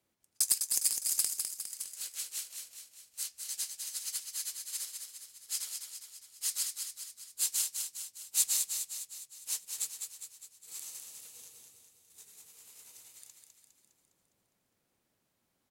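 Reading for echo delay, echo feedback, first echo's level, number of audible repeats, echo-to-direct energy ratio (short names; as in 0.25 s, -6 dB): 0.204 s, 55%, -5.5 dB, 6, -4.0 dB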